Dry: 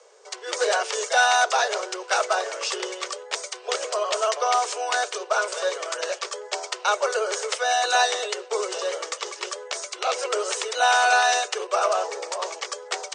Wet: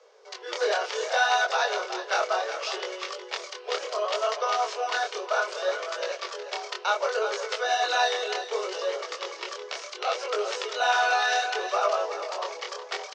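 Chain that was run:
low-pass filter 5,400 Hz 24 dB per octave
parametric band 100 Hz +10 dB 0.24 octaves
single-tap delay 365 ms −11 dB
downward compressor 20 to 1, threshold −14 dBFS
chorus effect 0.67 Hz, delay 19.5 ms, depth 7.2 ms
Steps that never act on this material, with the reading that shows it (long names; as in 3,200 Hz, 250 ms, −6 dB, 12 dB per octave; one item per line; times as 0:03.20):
parametric band 100 Hz: nothing at its input below 320 Hz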